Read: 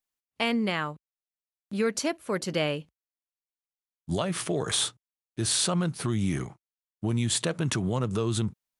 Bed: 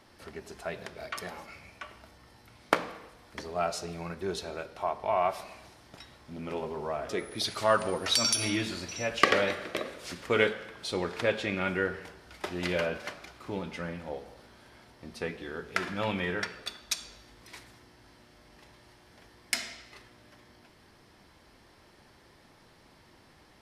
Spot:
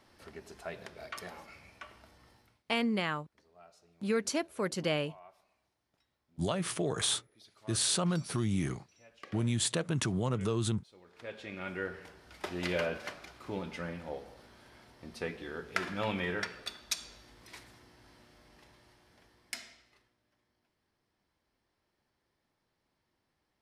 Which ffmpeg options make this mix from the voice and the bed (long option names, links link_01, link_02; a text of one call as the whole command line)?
ffmpeg -i stem1.wav -i stem2.wav -filter_complex "[0:a]adelay=2300,volume=-4dB[link_01];[1:a]volume=20dB,afade=type=out:start_time=2.28:duration=0.35:silence=0.0749894,afade=type=in:start_time=11.05:duration=1.47:silence=0.0562341,afade=type=out:start_time=18.21:duration=1.95:silence=0.105925[link_02];[link_01][link_02]amix=inputs=2:normalize=0" out.wav